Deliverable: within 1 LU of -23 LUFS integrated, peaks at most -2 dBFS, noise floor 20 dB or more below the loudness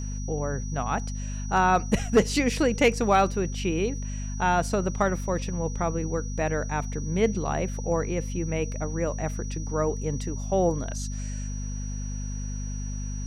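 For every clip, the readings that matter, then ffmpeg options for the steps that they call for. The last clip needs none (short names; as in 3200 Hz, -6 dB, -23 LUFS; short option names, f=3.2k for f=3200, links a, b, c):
hum 50 Hz; harmonics up to 250 Hz; hum level -29 dBFS; steady tone 5800 Hz; tone level -42 dBFS; loudness -27.5 LUFS; peak -10.0 dBFS; loudness target -23.0 LUFS
-> -af "bandreject=f=50:t=h:w=6,bandreject=f=100:t=h:w=6,bandreject=f=150:t=h:w=6,bandreject=f=200:t=h:w=6,bandreject=f=250:t=h:w=6"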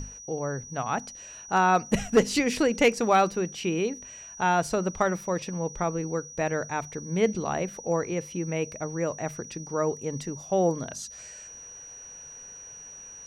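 hum none; steady tone 5800 Hz; tone level -42 dBFS
-> -af "bandreject=f=5.8k:w=30"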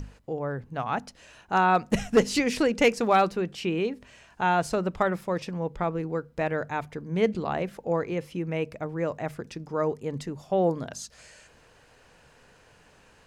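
steady tone none; loudness -27.5 LUFS; peak -10.0 dBFS; loudness target -23.0 LUFS
-> -af "volume=4.5dB"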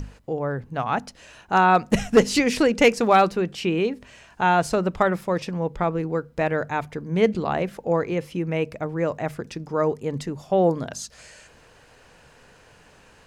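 loudness -23.0 LUFS; peak -5.5 dBFS; noise floor -53 dBFS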